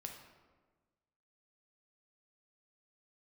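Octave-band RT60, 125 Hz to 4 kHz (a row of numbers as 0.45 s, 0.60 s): 1.6 s, 1.6 s, 1.5 s, 1.3 s, 1.1 s, 0.80 s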